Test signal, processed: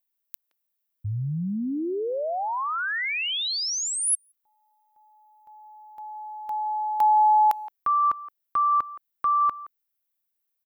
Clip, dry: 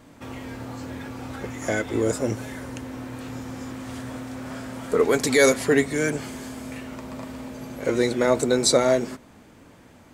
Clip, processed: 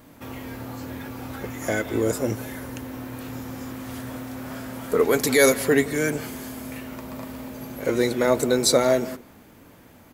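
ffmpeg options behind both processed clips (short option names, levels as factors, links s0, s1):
-filter_complex "[0:a]asplit=2[s0][s1];[s1]adelay=170,highpass=300,lowpass=3400,asoftclip=type=hard:threshold=0.168,volume=0.141[s2];[s0][s2]amix=inputs=2:normalize=0,aexciter=amount=6:drive=1.9:freq=11000"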